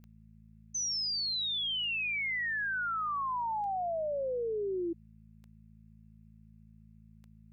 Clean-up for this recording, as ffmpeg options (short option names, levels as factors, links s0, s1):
-af "adeclick=t=4,bandreject=f=54.4:t=h:w=4,bandreject=f=108.8:t=h:w=4,bandreject=f=163.2:t=h:w=4,bandreject=f=217.6:t=h:w=4,agate=range=0.0891:threshold=0.00355"